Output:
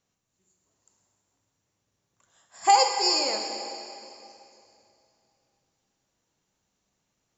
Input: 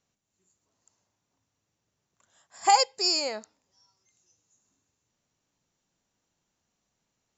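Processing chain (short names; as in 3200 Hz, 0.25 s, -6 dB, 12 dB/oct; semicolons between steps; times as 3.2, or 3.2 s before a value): plate-style reverb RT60 2.8 s, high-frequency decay 0.9×, DRR 2 dB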